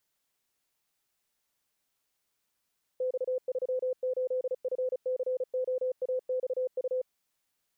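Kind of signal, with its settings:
Morse code "X38FCOAXU" 35 words per minute 510 Hz −27 dBFS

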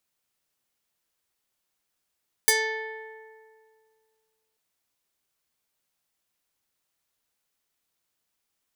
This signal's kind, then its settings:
Karplus-Strong string A4, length 2.09 s, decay 2.15 s, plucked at 0.33, medium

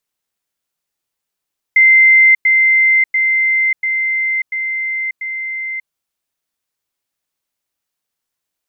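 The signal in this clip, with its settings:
level staircase 2,080 Hz −5 dBFS, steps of −3 dB, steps 6, 0.59 s 0.10 s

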